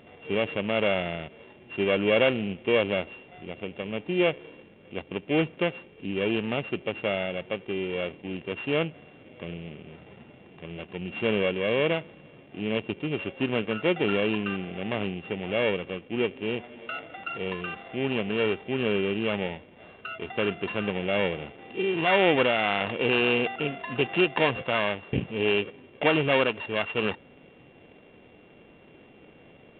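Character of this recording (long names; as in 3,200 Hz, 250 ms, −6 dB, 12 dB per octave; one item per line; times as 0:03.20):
a buzz of ramps at a fixed pitch in blocks of 16 samples
mu-law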